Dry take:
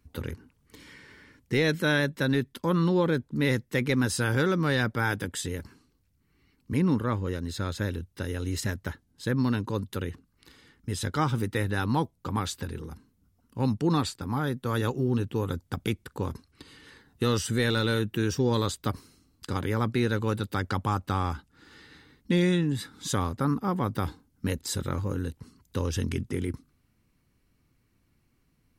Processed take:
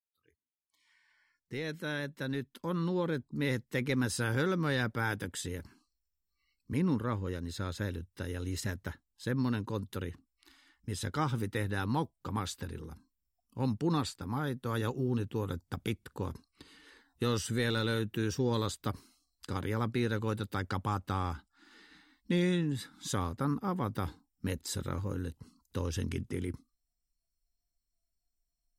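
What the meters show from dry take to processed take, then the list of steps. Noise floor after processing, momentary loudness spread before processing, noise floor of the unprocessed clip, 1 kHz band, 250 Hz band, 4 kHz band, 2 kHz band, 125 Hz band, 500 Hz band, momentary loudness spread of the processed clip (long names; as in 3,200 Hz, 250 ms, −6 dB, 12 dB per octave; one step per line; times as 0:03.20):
−85 dBFS, 11 LU, −70 dBFS, −5.5 dB, −6.0 dB, −6.0 dB, −6.5 dB, −6.0 dB, −6.5 dB, 10 LU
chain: fade in at the beginning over 3.98 s
noise reduction from a noise print of the clip's start 26 dB
level −5.5 dB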